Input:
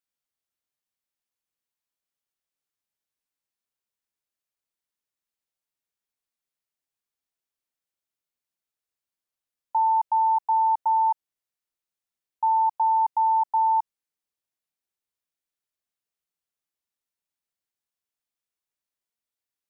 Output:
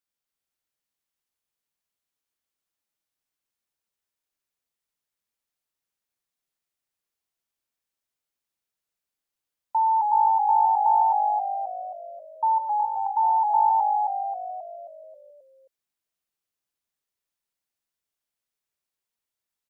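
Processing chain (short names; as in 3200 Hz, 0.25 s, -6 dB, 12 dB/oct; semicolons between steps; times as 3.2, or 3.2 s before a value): 12.58–13.1 notch 910 Hz, Q 7.7; frequency-shifting echo 0.267 s, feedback 53%, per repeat -51 Hz, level -3 dB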